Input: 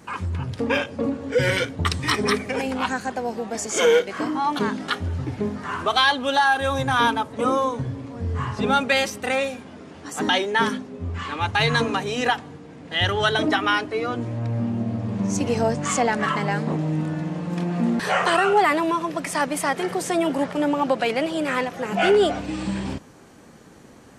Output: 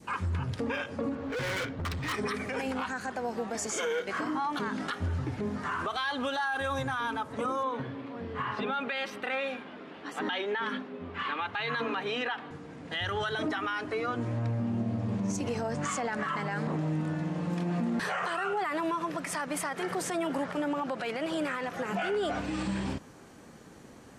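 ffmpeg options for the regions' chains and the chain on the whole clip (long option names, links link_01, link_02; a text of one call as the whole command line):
ffmpeg -i in.wav -filter_complex "[0:a]asettb=1/sr,asplit=3[link_01][link_02][link_03];[link_01]atrim=end=1.154[link_04];[link_02]atrim=start=1.15:end=2.13,asetpts=PTS-STARTPTS,afade=type=in:duration=0.004:curve=qsin,afade=type=out:start_time=0.976:duration=0.004:curve=qsin,lowpass=4000,volume=28.5dB,asoftclip=hard,volume=-28.5dB[link_05];[link_03]atrim=start=2.126[link_06];[link_04][link_05]acrossfade=duration=0.004:curve1=hsin:curve2=qsin[link_07];[link_07][link_06]acrossfade=duration=0.004:curve1=qsin:curve2=hsin,asettb=1/sr,asplit=3[link_08][link_09][link_10];[link_08]atrim=end=7.634[link_11];[link_09]atrim=start=7.63:end=12.51,asetpts=PTS-STARTPTS,afade=type=in:duration=0.004:curve=qsin,afade=type=out:start_time=4.876:duration=0.004:curve=qsin,highpass=220,highshelf=frequency=4800:width_type=q:width=1.5:gain=-12[link_12];[link_10]atrim=start=12.506[link_13];[link_11][link_12]acrossfade=duration=0.004:curve1=hsin:curve2=qsin[link_14];[link_14][link_13]acrossfade=duration=0.004:curve1=qsin:curve2=hsin,adynamicequalizer=threshold=0.0158:dfrequency=1400:dqfactor=1.3:tfrequency=1400:tqfactor=1.3:attack=5:release=100:ratio=0.375:range=3:mode=boostabove:tftype=bell,alimiter=limit=-20dB:level=0:latency=1:release=102,volume=-3.5dB" out.wav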